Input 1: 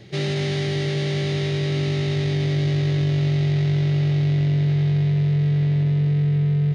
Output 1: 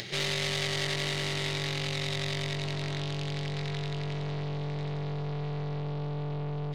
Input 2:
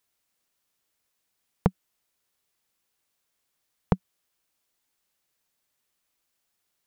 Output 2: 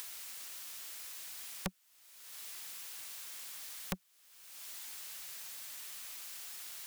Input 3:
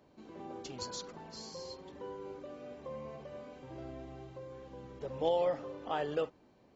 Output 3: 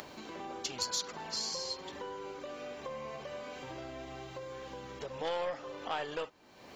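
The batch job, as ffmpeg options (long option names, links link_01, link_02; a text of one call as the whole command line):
ffmpeg -i in.wav -af "aeval=exprs='(tanh(20*val(0)+0.45)-tanh(0.45))/20':channel_layout=same,acompressor=mode=upward:threshold=-32dB:ratio=2.5,tiltshelf=frequency=760:gain=-7.5" out.wav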